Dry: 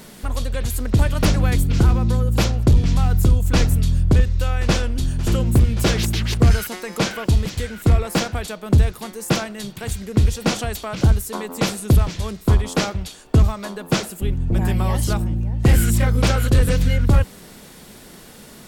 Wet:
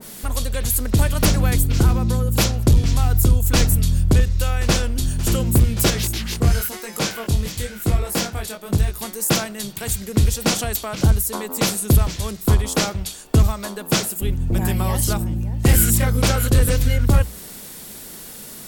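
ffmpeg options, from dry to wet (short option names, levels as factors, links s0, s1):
-filter_complex "[0:a]asettb=1/sr,asplit=3[s0][s1][s2];[s0]atrim=end=5.904[s3];[s1]atrim=start=5.9:end=8.98,asetpts=PTS-STARTPTS,afade=t=in:d=0.004:c=qsin,afade=t=out:st=3.076:d=0.004:c=qsin,flanger=delay=18.5:depth=4.7:speed=1[s4];[s2]atrim=start=8.976[s5];[s3][s4]acrossfade=d=0.004:c1=hsin:c2=qsin[s6];[s6][s5]acrossfade=d=0.004:c1=qsin:c2=hsin,aemphasis=mode=production:type=50kf,bandreject=f=60:t=h:w=6,bandreject=f=120:t=h:w=6,bandreject=f=180:t=h:w=6,adynamicequalizer=threshold=0.02:dfrequency=1700:dqfactor=0.7:tfrequency=1700:tqfactor=0.7:attack=5:release=100:ratio=0.375:range=1.5:mode=cutabove:tftype=highshelf"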